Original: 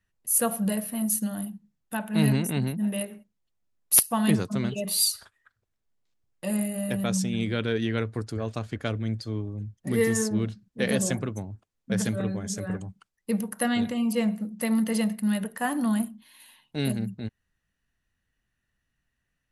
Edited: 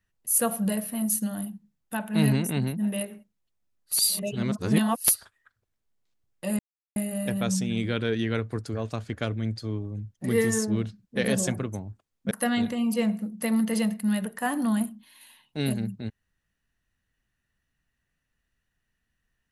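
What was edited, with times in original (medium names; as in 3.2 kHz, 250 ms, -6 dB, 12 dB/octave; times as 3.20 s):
3.94–5.13 s: reverse, crossfade 0.16 s
6.59 s: insert silence 0.37 s
11.94–13.50 s: delete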